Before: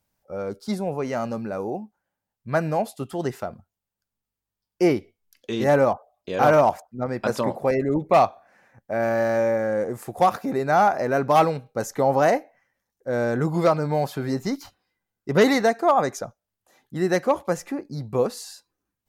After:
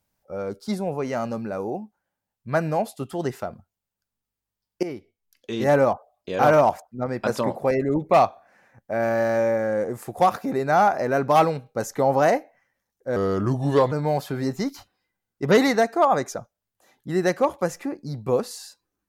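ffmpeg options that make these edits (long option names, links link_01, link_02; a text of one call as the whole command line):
ffmpeg -i in.wav -filter_complex "[0:a]asplit=4[link_01][link_02][link_03][link_04];[link_01]atrim=end=4.83,asetpts=PTS-STARTPTS,afade=type=out:start_time=4.826:duration=0.004:curve=hsin:silence=0.158489[link_05];[link_02]atrim=start=4.83:end=13.164,asetpts=PTS-STARTPTS,afade=type=in:duration=0.89:silence=0.158489[link_06];[link_03]atrim=start=13.16:end=13.78,asetpts=PTS-STARTPTS,asetrate=36162,aresample=44100[link_07];[link_04]atrim=start=13.776[link_08];[link_05][link_06]concat=n=2:v=0:a=1[link_09];[link_09][link_07]acrossfade=duration=0.004:curve1=hsin:curve2=hsin[link_10];[link_10][link_08]acrossfade=duration=0.004:curve1=hsin:curve2=hsin" out.wav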